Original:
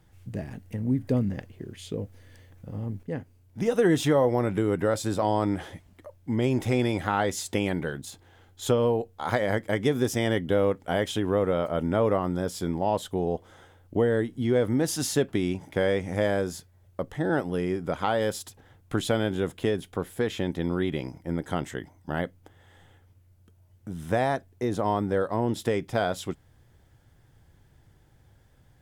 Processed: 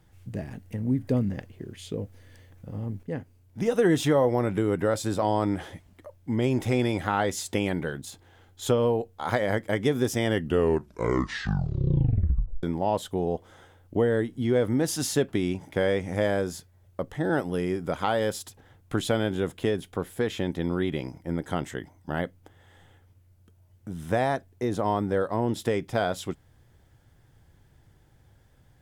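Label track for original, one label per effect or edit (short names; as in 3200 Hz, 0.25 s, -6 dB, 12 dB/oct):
10.270000	10.270000	tape stop 2.36 s
17.230000	18.200000	high shelf 5600 Hz +4.5 dB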